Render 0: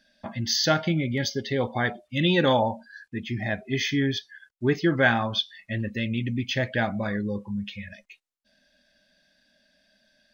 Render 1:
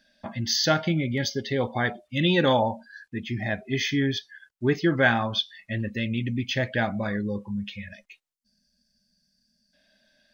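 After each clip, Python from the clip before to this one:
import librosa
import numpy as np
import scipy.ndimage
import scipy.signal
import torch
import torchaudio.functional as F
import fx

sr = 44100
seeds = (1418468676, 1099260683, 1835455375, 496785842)

y = fx.spec_box(x, sr, start_s=8.34, length_s=1.4, low_hz=250.0, high_hz=4200.0, gain_db=-19)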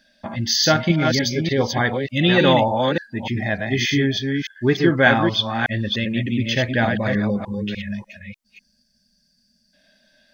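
y = fx.reverse_delay(x, sr, ms=298, wet_db=-4.0)
y = F.gain(torch.from_numpy(y), 5.0).numpy()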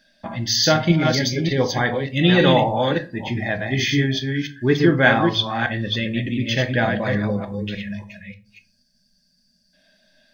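y = fx.room_shoebox(x, sr, seeds[0], volume_m3=170.0, walls='furnished', distance_m=0.67)
y = F.gain(torch.from_numpy(y), -1.0).numpy()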